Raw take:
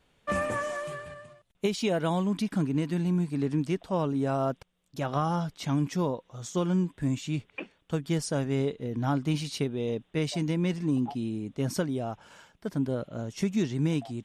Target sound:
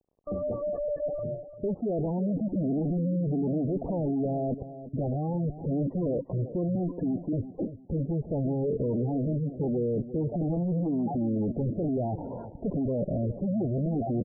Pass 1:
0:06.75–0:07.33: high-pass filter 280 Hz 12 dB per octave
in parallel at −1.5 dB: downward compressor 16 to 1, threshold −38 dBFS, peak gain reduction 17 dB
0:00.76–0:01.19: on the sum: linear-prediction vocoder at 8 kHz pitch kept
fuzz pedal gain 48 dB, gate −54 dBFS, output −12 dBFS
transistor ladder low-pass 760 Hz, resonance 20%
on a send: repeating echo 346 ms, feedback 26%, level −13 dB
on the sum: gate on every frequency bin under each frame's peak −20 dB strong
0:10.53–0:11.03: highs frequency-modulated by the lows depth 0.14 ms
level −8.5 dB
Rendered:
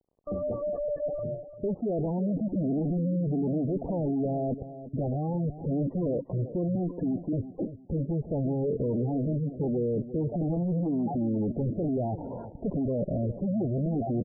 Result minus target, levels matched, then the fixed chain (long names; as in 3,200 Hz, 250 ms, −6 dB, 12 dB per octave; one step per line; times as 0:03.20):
downward compressor: peak gain reduction +7.5 dB
0:06.75–0:07.33: high-pass filter 280 Hz 12 dB per octave
in parallel at −1.5 dB: downward compressor 16 to 1, threshold −30 dBFS, peak gain reduction 9.5 dB
0:00.76–0:01.19: on the sum: linear-prediction vocoder at 8 kHz pitch kept
fuzz pedal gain 48 dB, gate −54 dBFS, output −12 dBFS
transistor ladder low-pass 760 Hz, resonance 20%
on a send: repeating echo 346 ms, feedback 26%, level −13 dB
on the sum: gate on every frequency bin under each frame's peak −20 dB strong
0:10.53–0:11.03: highs frequency-modulated by the lows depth 0.14 ms
level −8.5 dB